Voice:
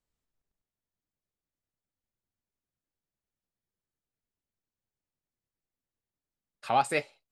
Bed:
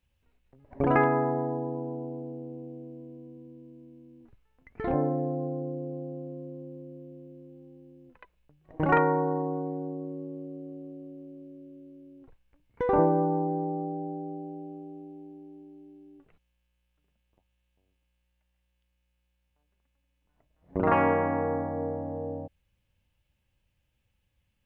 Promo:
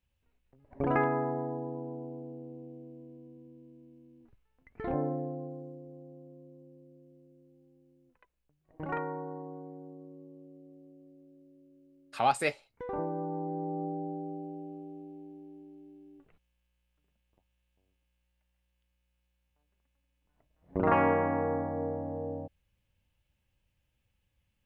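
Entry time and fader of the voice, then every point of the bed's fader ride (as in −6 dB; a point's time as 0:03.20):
5.50 s, −1.0 dB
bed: 0:05.12 −5 dB
0:05.84 −12.5 dB
0:13.03 −12.5 dB
0:13.85 −2 dB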